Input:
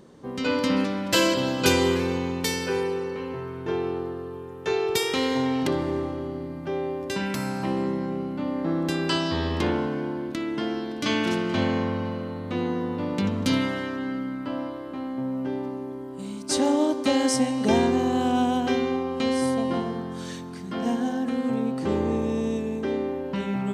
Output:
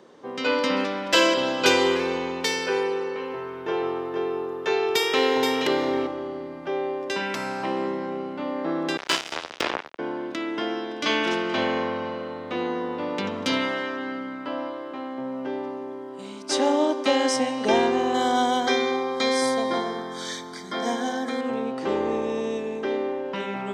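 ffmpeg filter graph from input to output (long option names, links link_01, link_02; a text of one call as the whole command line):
ffmpeg -i in.wav -filter_complex "[0:a]asettb=1/sr,asplit=3[link_01][link_02][link_03];[link_01]atrim=end=3.214[link_04];[link_02]atrim=start=3.21:end=6.07,asetpts=PTS-STARTPTS,afade=type=in:duration=0.004:curve=qsin,afade=type=out:start_time=2.856:duration=0.004:curve=qsin,equalizer=frequency=12000:width=5.1:gain=12.5,aecho=1:1:475:0.562,atrim=end_sample=126126[link_05];[link_03]atrim=start=6.066[link_06];[link_04][link_05]acrossfade=duration=0.004:curve1=hsin:curve2=qsin[link_07];[link_07][link_06]acrossfade=duration=0.004:curve1=qsin:curve2=hsin,asettb=1/sr,asplit=3[link_08][link_09][link_10];[link_08]atrim=end=8.974[link_11];[link_09]atrim=start=8.97:end=9.99,asetpts=PTS-STARTPTS,afade=type=in:duration=0.004:curve=qsin,afade=type=out:start_time=1.016:duration=0.004:curve=qsin,highshelf=frequency=3000:gain=6.5,acrusher=bits=2:mix=0:aa=0.5[link_12];[link_10]atrim=start=9.986[link_13];[link_11][link_12]acrossfade=duration=0.004:curve1=hsin:curve2=qsin[link_14];[link_14][link_13]acrossfade=duration=0.004:curve1=qsin:curve2=hsin,asettb=1/sr,asplit=3[link_15][link_16][link_17];[link_15]atrim=end=18.144[link_18];[link_16]atrim=start=18.14:end=21.41,asetpts=PTS-STARTPTS,afade=type=in:duration=0.004:curve=qsin,afade=type=out:start_time=3.266:duration=0.004:curve=qsin,asuperstop=centerf=2700:order=20:qfactor=4.3,highshelf=frequency=2700:gain=10[link_19];[link_17]atrim=start=21.406[link_20];[link_18][link_19]acrossfade=duration=0.004:curve1=hsin:curve2=qsin[link_21];[link_21][link_20]acrossfade=duration=0.004:curve1=qsin:curve2=hsin,highpass=frequency=130:poles=1,acrossover=split=320 6300:gain=0.2 1 0.2[link_22][link_23][link_24];[link_22][link_23][link_24]amix=inputs=3:normalize=0,bandreject=frequency=4300:width=15,volume=4dB" out.wav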